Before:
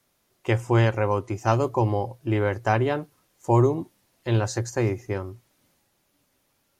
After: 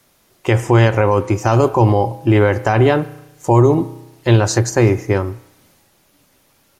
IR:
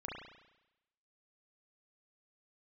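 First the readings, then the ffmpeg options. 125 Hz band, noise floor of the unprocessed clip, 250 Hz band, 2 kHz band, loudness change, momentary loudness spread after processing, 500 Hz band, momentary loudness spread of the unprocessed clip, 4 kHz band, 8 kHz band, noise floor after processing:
+9.5 dB, −70 dBFS, +10.0 dB, +9.0 dB, +9.5 dB, 11 LU, +9.5 dB, 12 LU, +10.5 dB, +12.5 dB, −58 dBFS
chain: -filter_complex "[0:a]asplit=2[link_01][link_02];[link_02]aecho=1:1:6.3:0.65[link_03];[1:a]atrim=start_sample=2205[link_04];[link_03][link_04]afir=irnorm=-1:irlink=0,volume=-16.5dB[link_05];[link_01][link_05]amix=inputs=2:normalize=0,alimiter=level_in=14dB:limit=-1dB:release=50:level=0:latency=1,volume=-2dB"

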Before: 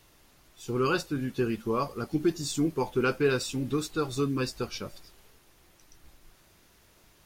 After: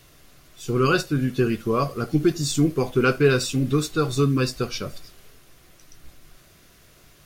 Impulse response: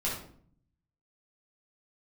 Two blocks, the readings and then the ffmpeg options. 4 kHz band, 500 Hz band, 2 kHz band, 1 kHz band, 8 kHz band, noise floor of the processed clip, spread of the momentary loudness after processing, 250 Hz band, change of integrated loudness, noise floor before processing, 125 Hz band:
+7.0 dB, +6.5 dB, +7.0 dB, +5.5 dB, +7.0 dB, −54 dBFS, 9 LU, +6.5 dB, +7.0 dB, −61 dBFS, +10.5 dB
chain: -filter_complex "[0:a]equalizer=frequency=140:width_type=o:width=0.26:gain=5,bandreject=frequency=880:width=5.2,asplit=2[link_01][link_02];[1:a]atrim=start_sample=2205,atrim=end_sample=3528[link_03];[link_02][link_03]afir=irnorm=-1:irlink=0,volume=-18.5dB[link_04];[link_01][link_04]amix=inputs=2:normalize=0,volume=6dB"

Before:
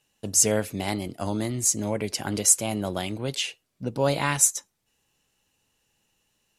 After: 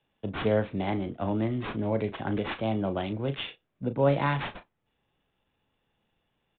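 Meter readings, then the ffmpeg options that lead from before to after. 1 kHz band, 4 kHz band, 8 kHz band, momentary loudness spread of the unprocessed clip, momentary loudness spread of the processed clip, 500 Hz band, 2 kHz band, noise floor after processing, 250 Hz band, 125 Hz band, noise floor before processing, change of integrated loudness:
−0.5 dB, −8.0 dB, below −40 dB, 11 LU, 10 LU, 0.0 dB, −3.0 dB, −78 dBFS, 0.0 dB, +0.5 dB, −75 dBFS, −5.5 dB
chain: -filter_complex "[0:a]highshelf=frequency=2900:gain=-11.5,acrossover=split=210|460|2700[link_01][link_02][link_03][link_04];[link_04]asoftclip=type=tanh:threshold=-29dB[link_05];[link_01][link_02][link_03][link_05]amix=inputs=4:normalize=0,acrusher=samples=7:mix=1:aa=0.000001,asplit=2[link_06][link_07];[link_07]adelay=36,volume=-11dB[link_08];[link_06][link_08]amix=inputs=2:normalize=0,aresample=8000,aresample=44100"

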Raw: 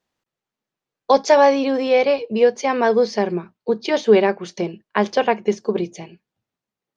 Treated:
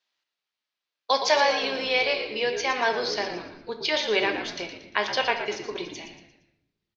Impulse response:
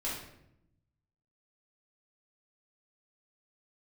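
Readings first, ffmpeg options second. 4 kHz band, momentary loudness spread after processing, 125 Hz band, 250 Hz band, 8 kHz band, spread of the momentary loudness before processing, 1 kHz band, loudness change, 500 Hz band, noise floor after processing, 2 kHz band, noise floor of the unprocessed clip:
+5.0 dB, 14 LU, −15.0 dB, −14.5 dB, can't be measured, 11 LU, −6.5 dB, −6.5 dB, −11.0 dB, below −85 dBFS, +1.0 dB, below −85 dBFS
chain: -filter_complex "[0:a]lowpass=frequency=4600:width=0.5412,lowpass=frequency=4600:width=1.3066,aderivative,asplit=5[link_01][link_02][link_03][link_04][link_05];[link_02]adelay=116,afreqshift=-70,volume=-10dB[link_06];[link_03]adelay=232,afreqshift=-140,volume=-17.5dB[link_07];[link_04]adelay=348,afreqshift=-210,volume=-25.1dB[link_08];[link_05]adelay=464,afreqshift=-280,volume=-32.6dB[link_09];[link_01][link_06][link_07][link_08][link_09]amix=inputs=5:normalize=0,asplit=2[link_10][link_11];[1:a]atrim=start_sample=2205[link_12];[link_11][link_12]afir=irnorm=-1:irlink=0,volume=-7.5dB[link_13];[link_10][link_13]amix=inputs=2:normalize=0,volume=9dB"

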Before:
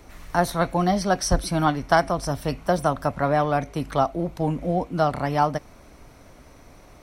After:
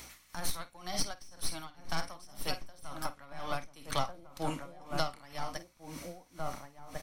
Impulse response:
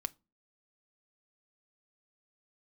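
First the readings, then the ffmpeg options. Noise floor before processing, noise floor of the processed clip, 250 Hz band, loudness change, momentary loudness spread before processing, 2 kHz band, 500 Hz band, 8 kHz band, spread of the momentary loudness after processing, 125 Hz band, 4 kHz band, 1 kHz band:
−49 dBFS, −62 dBFS, −19.0 dB, −16.0 dB, 5 LU, −13.5 dB, −18.5 dB, −7.0 dB, 10 LU, −18.0 dB, −5.0 dB, −16.5 dB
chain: -filter_complex "[0:a]highpass=frequency=240:poles=1,aderivative,asplit=2[link_01][link_02];[link_02]adelay=50,volume=-11.5dB[link_03];[link_01][link_03]amix=inputs=2:normalize=0,aeval=exprs='0.168*(cos(1*acos(clip(val(0)/0.168,-1,1)))-cos(1*PI/2))+0.0596*(cos(5*acos(clip(val(0)/0.168,-1,1)))-cos(5*PI/2))+0.0299*(cos(8*acos(clip(val(0)/0.168,-1,1)))-cos(8*PI/2))':channel_layout=same,lowpass=frequency=1400:poles=1,equalizer=frequency=900:width=0.36:gain=-9.5,asplit=2[link_04][link_05];[link_05]adelay=1399,volume=-6dB,highshelf=frequency=4000:gain=-31.5[link_06];[link_04][link_06]amix=inputs=2:normalize=0,asplit=2[link_07][link_08];[1:a]atrim=start_sample=2205[link_09];[link_08][link_09]afir=irnorm=-1:irlink=0,volume=10.5dB[link_10];[link_07][link_10]amix=inputs=2:normalize=0,acompressor=threshold=-33dB:ratio=6,aeval=exprs='val(0)+0.000891*(sin(2*PI*60*n/s)+sin(2*PI*2*60*n/s)/2+sin(2*PI*3*60*n/s)/3+sin(2*PI*4*60*n/s)/4+sin(2*PI*5*60*n/s)/5)':channel_layout=same,aeval=exprs='val(0)*pow(10,-22*(0.5-0.5*cos(2*PI*2*n/s))/20)':channel_layout=same,volume=6.5dB"

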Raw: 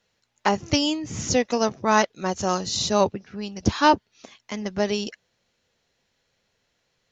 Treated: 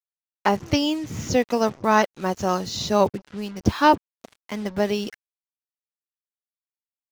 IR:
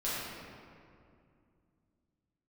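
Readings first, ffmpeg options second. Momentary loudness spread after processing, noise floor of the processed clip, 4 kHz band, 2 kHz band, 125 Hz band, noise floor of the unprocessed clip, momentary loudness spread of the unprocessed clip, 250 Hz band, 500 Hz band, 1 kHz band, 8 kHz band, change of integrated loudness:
11 LU, below −85 dBFS, −2.5 dB, 0.0 dB, +1.5 dB, −73 dBFS, 12 LU, +1.5 dB, +1.5 dB, +1.0 dB, can't be measured, +0.5 dB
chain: -af "aemphasis=mode=reproduction:type=50fm,acrusher=bits=6:mix=0:aa=0.5,volume=1dB"

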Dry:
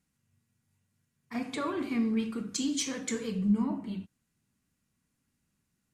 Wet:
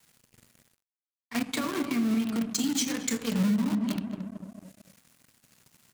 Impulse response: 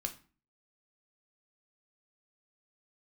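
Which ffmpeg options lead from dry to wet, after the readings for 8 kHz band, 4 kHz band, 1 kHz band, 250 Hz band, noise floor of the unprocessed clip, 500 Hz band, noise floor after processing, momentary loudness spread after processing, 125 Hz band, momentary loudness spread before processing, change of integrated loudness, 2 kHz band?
+4.5 dB, +4.5 dB, +2.0 dB, +3.5 dB, −80 dBFS, 0.0 dB, below −85 dBFS, 12 LU, +4.0 dB, 10 LU, +3.0 dB, +5.0 dB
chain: -filter_complex "[0:a]asplit=2[link_01][link_02];[link_02]acrusher=bits=4:mix=0:aa=0.000001,volume=-4dB[link_03];[link_01][link_03]amix=inputs=2:normalize=0,acrossover=split=220[link_04][link_05];[link_05]acompressor=threshold=-32dB:ratio=4[link_06];[link_04][link_06]amix=inputs=2:normalize=0,adynamicequalizer=threshold=0.0141:dfrequency=240:dqfactor=1:tfrequency=240:tqfactor=1:attack=5:release=100:ratio=0.375:range=2:mode=boostabove:tftype=bell,bandreject=frequency=50:width_type=h:width=6,bandreject=frequency=100:width_type=h:width=6,bandreject=frequency=150:width_type=h:width=6,bandreject=frequency=200:width_type=h:width=6,asplit=2[link_07][link_08];[link_08]adelay=223,lowpass=frequency=920:poles=1,volume=-5dB,asplit=2[link_09][link_10];[link_10]adelay=223,lowpass=frequency=920:poles=1,volume=0.31,asplit=2[link_11][link_12];[link_12]adelay=223,lowpass=frequency=920:poles=1,volume=0.31,asplit=2[link_13][link_14];[link_14]adelay=223,lowpass=frequency=920:poles=1,volume=0.31[link_15];[link_07][link_09][link_11][link_13][link_15]amix=inputs=5:normalize=0,areverse,acompressor=mode=upward:threshold=-31dB:ratio=2.5,areverse,highpass=frequency=110:width=0.5412,highpass=frequency=110:width=1.3066,alimiter=limit=-21dB:level=0:latency=1:release=175,equalizer=frequency=420:width_type=o:width=3:gain=-7,aeval=exprs='sgn(val(0))*max(abs(val(0))-0.00237,0)':channel_layout=same,volume=7.5dB"

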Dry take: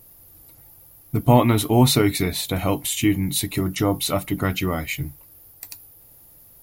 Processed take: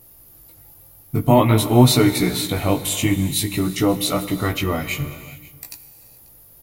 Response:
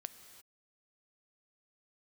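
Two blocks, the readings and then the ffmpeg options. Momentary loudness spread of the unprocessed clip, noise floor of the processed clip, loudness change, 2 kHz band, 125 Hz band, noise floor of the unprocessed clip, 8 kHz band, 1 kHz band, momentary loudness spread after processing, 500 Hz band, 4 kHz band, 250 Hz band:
19 LU, −48 dBFS, +2.0 dB, +2.0 dB, +2.0 dB, −50 dBFS, +2.0 dB, +1.5 dB, 19 LU, +2.5 dB, +2.0 dB, +2.5 dB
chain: -filter_complex "[0:a]flanger=delay=16:depth=4.8:speed=0.5,aecho=1:1:539:0.0708,asplit=2[link_01][link_02];[1:a]atrim=start_sample=2205,asetrate=35721,aresample=44100[link_03];[link_02][link_03]afir=irnorm=-1:irlink=0,volume=11dB[link_04];[link_01][link_04]amix=inputs=2:normalize=0,volume=-6dB"

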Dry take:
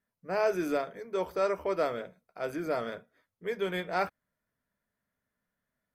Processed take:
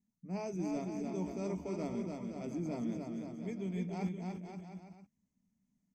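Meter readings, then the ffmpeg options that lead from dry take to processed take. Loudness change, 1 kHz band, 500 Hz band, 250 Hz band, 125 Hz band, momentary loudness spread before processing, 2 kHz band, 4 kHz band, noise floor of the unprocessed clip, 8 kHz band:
−7.0 dB, −13.0 dB, −11.5 dB, +2.0 dB, +6.0 dB, 11 LU, −16.5 dB, −13.5 dB, below −85 dBFS, can't be measured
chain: -af "firequalizer=gain_entry='entry(120,0);entry(200,11);entry(490,-16);entry(850,-9);entry(1500,-27);entry(2200,-9);entry(3800,-17);entry(6400,3);entry(11000,-20)':delay=0.05:min_phase=1,areverse,acompressor=threshold=-36dB:ratio=6,areverse,aecho=1:1:290|522|707.6|856.1|974.9:0.631|0.398|0.251|0.158|0.1,volume=1dB"

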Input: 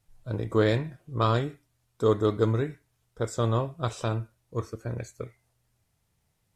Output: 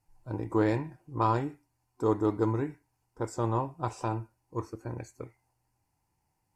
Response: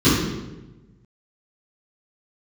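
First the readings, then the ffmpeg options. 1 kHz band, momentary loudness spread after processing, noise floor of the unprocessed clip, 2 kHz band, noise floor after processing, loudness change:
+0.5 dB, 13 LU, −74 dBFS, −5.5 dB, −78 dBFS, −3.5 dB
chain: -af "superequalizer=6b=2.24:9b=3.55:13b=0.316,volume=-5.5dB"

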